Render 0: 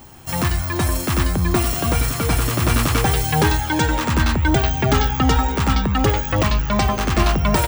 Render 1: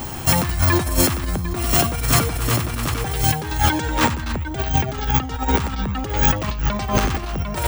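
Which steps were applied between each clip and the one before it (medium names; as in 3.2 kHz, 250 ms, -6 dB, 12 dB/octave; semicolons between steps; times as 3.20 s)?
in parallel at +2.5 dB: peak limiter -18.5 dBFS, peak gain reduction 11.5 dB; on the sum: compressor with a negative ratio -19 dBFS, ratio -0.5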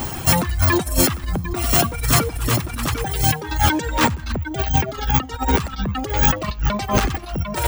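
reverb removal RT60 1.4 s; in parallel at -6 dB: overload inside the chain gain 22.5 dB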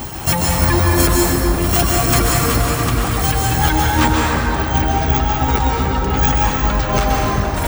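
plate-style reverb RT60 3.8 s, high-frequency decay 0.5×, pre-delay 115 ms, DRR -4 dB; trim -1 dB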